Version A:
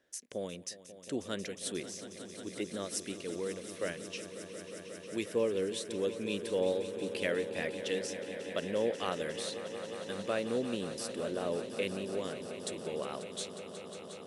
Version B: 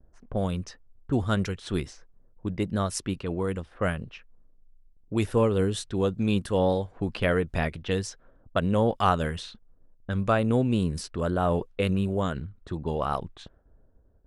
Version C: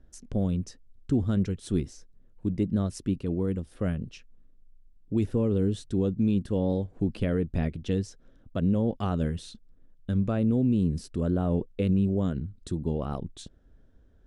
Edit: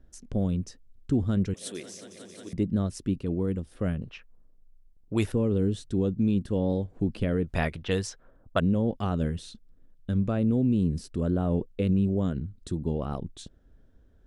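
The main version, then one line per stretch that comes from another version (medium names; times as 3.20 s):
C
1.54–2.53 s: from A
4.02–5.32 s: from B
7.44–8.60 s: from B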